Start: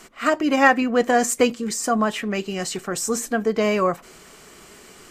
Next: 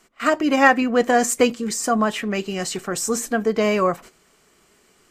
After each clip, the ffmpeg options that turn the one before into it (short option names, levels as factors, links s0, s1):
-af "agate=range=0.224:threshold=0.0112:ratio=16:detection=peak,volume=1.12"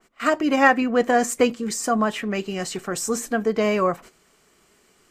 -af "adynamicequalizer=threshold=0.0178:dfrequency=2900:dqfactor=0.7:tfrequency=2900:tqfactor=0.7:attack=5:release=100:ratio=0.375:range=2:mode=cutabove:tftype=highshelf,volume=0.841"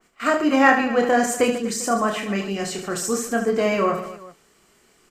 -af "aecho=1:1:30|75|142.5|243.8|395.6:0.631|0.398|0.251|0.158|0.1,volume=0.891"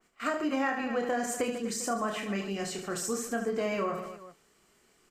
-af "acompressor=threshold=0.112:ratio=6,volume=0.422"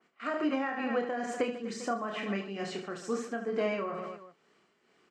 -af "tremolo=f=2.2:d=0.51,highpass=160,lowpass=3700,volume=1.19"